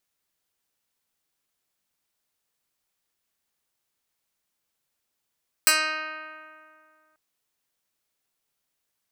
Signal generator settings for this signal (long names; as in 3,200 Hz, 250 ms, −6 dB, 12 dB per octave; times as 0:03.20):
Karplus-Strong string D#4, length 1.49 s, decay 2.39 s, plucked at 0.09, medium